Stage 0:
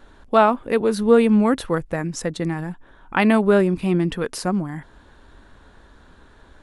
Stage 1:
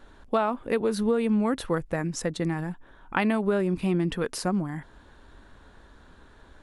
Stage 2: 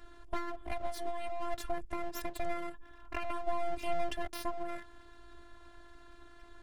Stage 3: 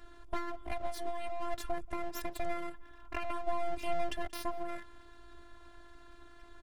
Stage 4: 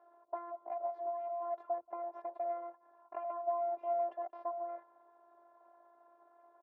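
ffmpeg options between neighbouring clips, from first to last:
ffmpeg -i in.wav -af "acompressor=threshold=-17dB:ratio=10,volume=-3dB" out.wav
ffmpeg -i in.wav -filter_complex "[0:a]acrossover=split=400[link_01][link_02];[link_02]acompressor=threshold=-34dB:ratio=8[link_03];[link_01][link_03]amix=inputs=2:normalize=0,afftfilt=real='hypot(re,im)*cos(PI*b)':imag='0':win_size=512:overlap=0.75,aeval=exprs='abs(val(0))':channel_layout=same,volume=1dB" out.wav
ffmpeg -i in.wav -filter_complex "[0:a]asplit=2[link_01][link_02];[link_02]adelay=180.8,volume=-25dB,highshelf=frequency=4000:gain=-4.07[link_03];[link_01][link_03]amix=inputs=2:normalize=0" out.wav
ffmpeg -i in.wav -af "asuperpass=centerf=700:order=4:qfactor=1.6,volume=2.5dB" out.wav

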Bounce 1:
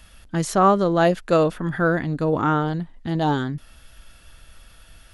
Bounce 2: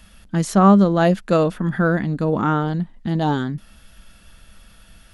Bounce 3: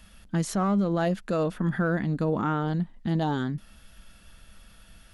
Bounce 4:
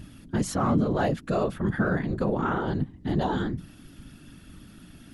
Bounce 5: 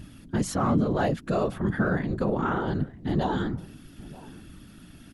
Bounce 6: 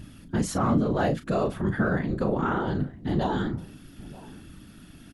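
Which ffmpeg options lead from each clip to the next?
ffmpeg -i in.wav -af "equalizer=frequency=200:width=4:gain=11.5" out.wav
ffmpeg -i in.wav -filter_complex "[0:a]asplit=2[link_01][link_02];[link_02]asoftclip=type=hard:threshold=-10.5dB,volume=-4dB[link_03];[link_01][link_03]amix=inputs=2:normalize=0,alimiter=limit=-9dB:level=0:latency=1:release=147,volume=-8.5dB" out.wav
ffmpeg -i in.wav -af "aeval=exprs='val(0)+0.0126*(sin(2*PI*50*n/s)+sin(2*PI*2*50*n/s)/2+sin(2*PI*3*50*n/s)/3+sin(2*PI*4*50*n/s)/4+sin(2*PI*5*50*n/s)/5)':channel_layout=same,bandreject=frequency=50:width_type=h:width=6,bandreject=frequency=100:width_type=h:width=6,bandreject=frequency=150:width_type=h:width=6,afftfilt=real='hypot(re,im)*cos(2*PI*random(0))':imag='hypot(re,im)*sin(2*PI*random(1))':win_size=512:overlap=0.75,volume=6.5dB" out.wav
ffmpeg -i in.wav -filter_complex "[0:a]asplit=2[link_01][link_02];[link_02]adelay=932.9,volume=-20dB,highshelf=frequency=4000:gain=-21[link_03];[link_01][link_03]amix=inputs=2:normalize=0" out.wav
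ffmpeg -i in.wav -filter_complex "[0:a]asplit=2[link_01][link_02];[link_02]adelay=36,volume=-10.5dB[link_03];[link_01][link_03]amix=inputs=2:normalize=0" out.wav

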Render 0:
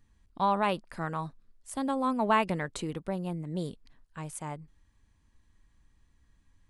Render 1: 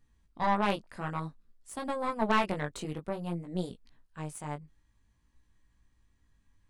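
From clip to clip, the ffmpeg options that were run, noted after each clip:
ffmpeg -i in.wav -af "flanger=delay=16.5:depth=4:speed=0.55,aeval=exprs='0.168*(cos(1*acos(clip(val(0)/0.168,-1,1)))-cos(1*PI/2))+0.0376*(cos(4*acos(clip(val(0)/0.168,-1,1)))-cos(4*PI/2))+0.00944*(cos(6*acos(clip(val(0)/0.168,-1,1)))-cos(6*PI/2))+0.00668*(cos(8*acos(clip(val(0)/0.168,-1,1)))-cos(8*PI/2))':channel_layout=same" out.wav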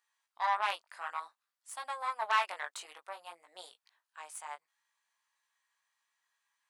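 ffmpeg -i in.wav -af "highpass=frequency=810:width=0.5412,highpass=frequency=810:width=1.3066" out.wav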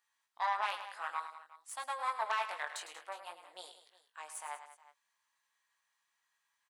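ffmpeg -i in.wav -filter_complex "[0:a]alimiter=limit=-23dB:level=0:latency=1:release=226,asplit=2[link_01][link_02];[link_02]aecho=0:1:105|187|362:0.282|0.178|0.112[link_03];[link_01][link_03]amix=inputs=2:normalize=0" out.wav

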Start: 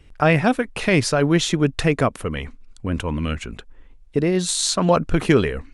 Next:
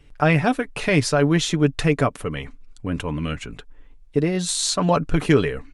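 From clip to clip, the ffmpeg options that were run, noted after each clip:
ffmpeg -i in.wav -af "aecho=1:1:6.9:0.39,volume=-2dB" out.wav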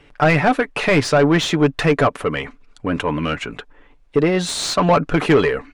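ffmpeg -i in.wav -filter_complex "[0:a]asplit=2[link_01][link_02];[link_02]highpass=frequency=720:poles=1,volume=20dB,asoftclip=type=tanh:threshold=-4dB[link_03];[link_01][link_03]amix=inputs=2:normalize=0,lowpass=frequency=1500:poles=1,volume=-6dB" out.wav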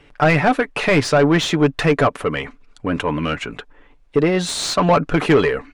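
ffmpeg -i in.wav -af anull out.wav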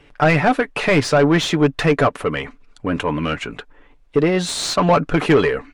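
ffmpeg -i in.wav -ar 44100 -c:a libvorbis -b:a 96k out.ogg

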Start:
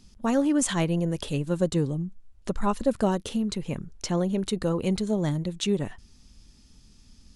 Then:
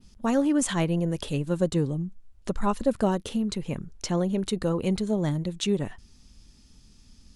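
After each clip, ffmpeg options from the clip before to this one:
ffmpeg -i in.wav -af "adynamicequalizer=threshold=0.00398:dfrequency=6200:dqfactor=0.78:tfrequency=6200:tqfactor=0.78:attack=5:release=100:ratio=0.375:range=2:mode=cutabove:tftype=bell" out.wav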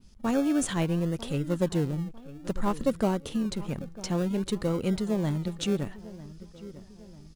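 ffmpeg -i in.wav -filter_complex "[0:a]asplit=2[link_01][link_02];[link_02]adelay=948,lowpass=frequency=1400:poles=1,volume=-16.5dB,asplit=2[link_03][link_04];[link_04]adelay=948,lowpass=frequency=1400:poles=1,volume=0.5,asplit=2[link_05][link_06];[link_06]adelay=948,lowpass=frequency=1400:poles=1,volume=0.5,asplit=2[link_07][link_08];[link_08]adelay=948,lowpass=frequency=1400:poles=1,volume=0.5[link_09];[link_01][link_03][link_05][link_07][link_09]amix=inputs=5:normalize=0,asplit=2[link_10][link_11];[link_11]acrusher=samples=35:mix=1:aa=0.000001:lfo=1:lforange=21:lforate=0.57,volume=-11.5dB[link_12];[link_10][link_12]amix=inputs=2:normalize=0,volume=-3.5dB" out.wav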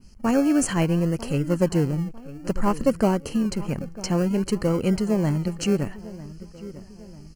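ffmpeg -i in.wav -af "asuperstop=centerf=3600:order=8:qfactor=3.8,volume=5.5dB" out.wav

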